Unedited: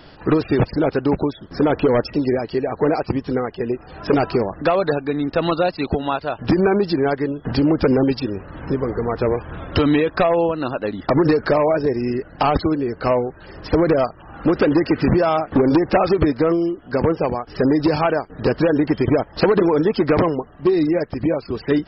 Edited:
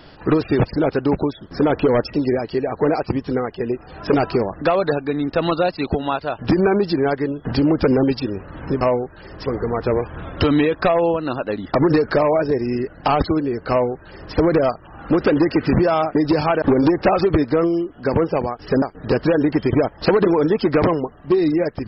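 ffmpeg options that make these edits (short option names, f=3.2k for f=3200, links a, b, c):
-filter_complex "[0:a]asplit=6[a][b][c][d][e][f];[a]atrim=end=8.812[g];[b]atrim=start=13.048:end=13.702[h];[c]atrim=start=8.808:end=15.502[i];[d]atrim=start=17.698:end=18.172[j];[e]atrim=start=15.498:end=17.702[k];[f]atrim=start=18.168[l];[g][h]acrossfade=d=0.004:c1=hsin:c2=hsin[m];[m][i]acrossfade=d=0.004:c1=hsin:c2=hsin[n];[n][j]acrossfade=d=0.004:c1=hsin:c2=hsin[o];[o][k]acrossfade=d=0.004:c1=hsin:c2=hsin[p];[p][l]acrossfade=d=0.004:c1=hsin:c2=hsin"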